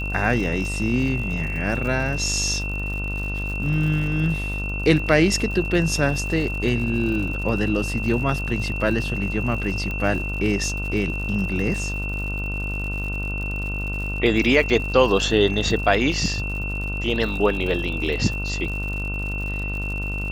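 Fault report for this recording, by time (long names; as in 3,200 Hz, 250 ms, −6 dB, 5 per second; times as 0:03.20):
mains buzz 50 Hz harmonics 30 −28 dBFS
surface crackle 96 per second −31 dBFS
whistle 2,700 Hz −29 dBFS
0:00.75: drop-out 2.8 ms
0:09.91: click −17 dBFS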